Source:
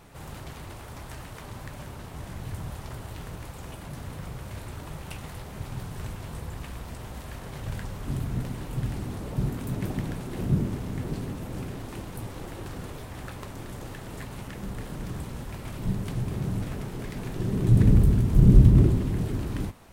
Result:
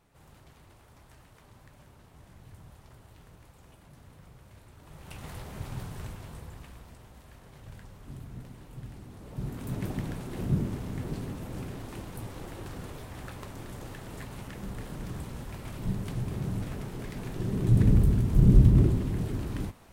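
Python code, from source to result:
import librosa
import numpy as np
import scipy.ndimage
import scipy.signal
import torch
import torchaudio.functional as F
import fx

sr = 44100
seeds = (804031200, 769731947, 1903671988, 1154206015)

y = fx.gain(x, sr, db=fx.line((4.76, -15.0), (5.29, -2.0), (5.81, -2.0), (7.1, -13.0), (9.12, -13.0), (9.73, -3.0)))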